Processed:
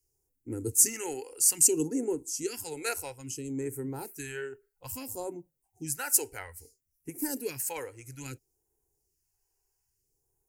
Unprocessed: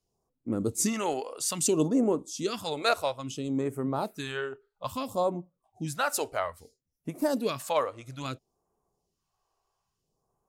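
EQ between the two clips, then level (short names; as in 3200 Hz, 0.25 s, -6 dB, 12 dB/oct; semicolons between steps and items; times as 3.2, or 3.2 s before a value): high shelf 6200 Hz +10.5 dB; fixed phaser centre 480 Hz, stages 4; fixed phaser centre 1500 Hz, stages 4; +3.5 dB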